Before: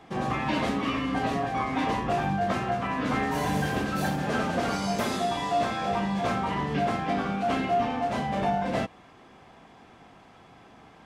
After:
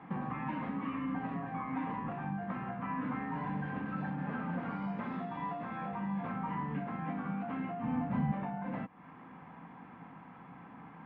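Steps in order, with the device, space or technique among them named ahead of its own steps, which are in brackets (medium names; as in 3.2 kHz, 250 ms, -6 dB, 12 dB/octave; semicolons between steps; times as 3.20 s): bass amplifier (compression 4:1, threshold -38 dBFS, peak gain reduction 14 dB; cabinet simulation 84–2200 Hz, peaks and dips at 92 Hz -7 dB, 170 Hz +9 dB, 260 Hz +5 dB, 390 Hz -9 dB, 640 Hz -8 dB, 960 Hz +5 dB); 7.83–8.32 s: tone controls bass +12 dB, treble +1 dB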